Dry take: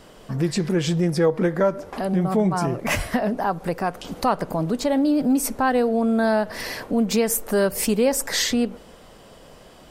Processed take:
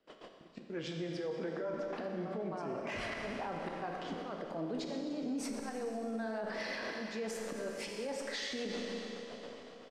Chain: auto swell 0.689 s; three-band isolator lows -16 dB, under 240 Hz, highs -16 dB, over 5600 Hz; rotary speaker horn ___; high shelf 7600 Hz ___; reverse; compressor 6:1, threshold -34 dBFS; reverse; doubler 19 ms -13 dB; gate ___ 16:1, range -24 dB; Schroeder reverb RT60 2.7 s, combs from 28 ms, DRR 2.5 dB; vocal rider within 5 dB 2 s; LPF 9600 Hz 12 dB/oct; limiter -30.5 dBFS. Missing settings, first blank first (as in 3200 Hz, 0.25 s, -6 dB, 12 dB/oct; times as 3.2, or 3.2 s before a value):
7.5 Hz, -5 dB, -49 dBFS